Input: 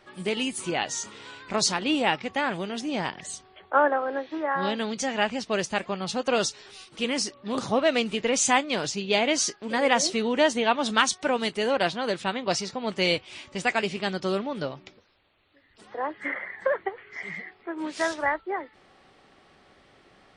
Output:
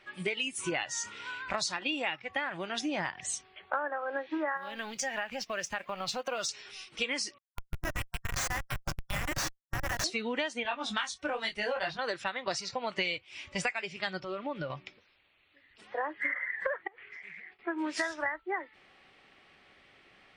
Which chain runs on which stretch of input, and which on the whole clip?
4.57–6.49 G.711 law mismatch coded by A + compressor, threshold -31 dBFS
7.38–10.04 HPF 1300 Hz + Schmitt trigger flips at -24.5 dBFS
10.63–11.99 low shelf 120 Hz +9 dB + detuned doubles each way 26 cents
14.21–14.7 compressor 10:1, threshold -32 dBFS + air absorption 120 m
16.87–17.59 expander -50 dBFS + compressor 16:1, threshold -44 dBFS + Doppler distortion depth 0.47 ms
whole clip: spectral noise reduction 10 dB; bell 2400 Hz +11 dB 1.2 oct; compressor 12:1, threshold -32 dBFS; gain +2.5 dB

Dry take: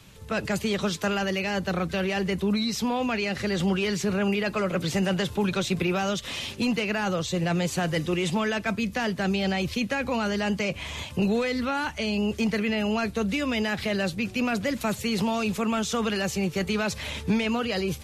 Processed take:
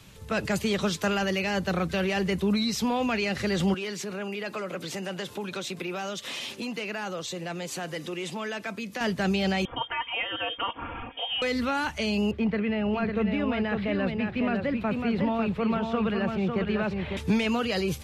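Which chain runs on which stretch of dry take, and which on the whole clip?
3.74–9.01 compressor 2.5:1, threshold -31 dBFS + HPF 230 Hz
9.65–11.42 HPF 1300 Hz 6 dB/oct + comb 4.5 ms, depth 87% + inverted band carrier 3400 Hz
12.31–17.17 air absorption 450 m + echo 0.55 s -5 dB
whole clip: dry

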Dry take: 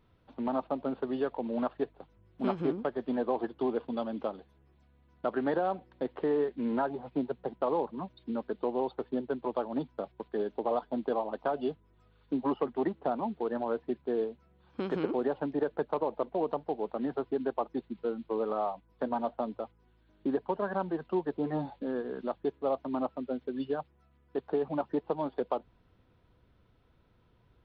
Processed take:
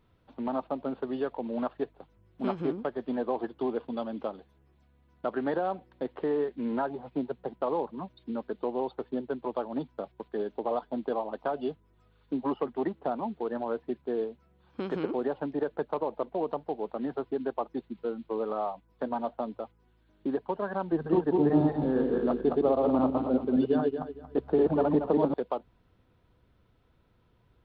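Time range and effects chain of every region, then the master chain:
20.92–25.34 regenerating reverse delay 0.115 s, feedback 48%, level -1 dB + low shelf 450 Hz +9 dB
whole clip: dry

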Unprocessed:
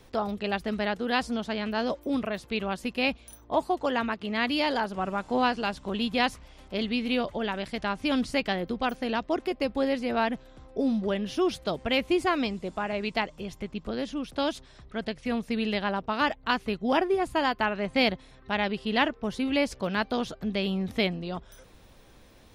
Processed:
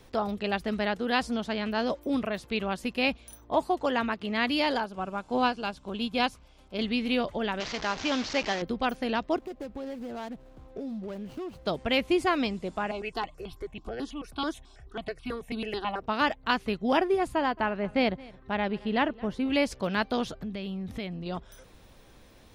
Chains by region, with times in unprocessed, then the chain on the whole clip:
4.78–6.79 notch 1900 Hz, Q 6 + upward expander, over -34 dBFS
7.6–8.62 delta modulation 32 kbps, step -29 dBFS + tone controls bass -9 dB, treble +2 dB
9.36–11.66 median filter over 25 samples + compressor 4:1, threshold -35 dBFS
12.91–16.02 comb 2.7 ms, depth 41% + step phaser 9.2 Hz 500–1900 Hz
17.35–19.5 high shelf 2800 Hz -12 dB + echo 0.22 s -22.5 dB
20.32–21.26 tone controls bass +5 dB, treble -2 dB + compressor 2.5:1, threshold -36 dBFS
whole clip: dry

